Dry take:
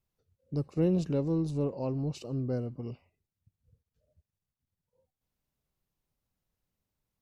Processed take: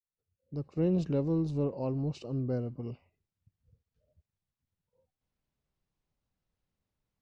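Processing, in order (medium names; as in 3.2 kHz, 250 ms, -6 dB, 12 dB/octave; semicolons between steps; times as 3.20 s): fade-in on the opening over 1.02 s; distance through air 89 m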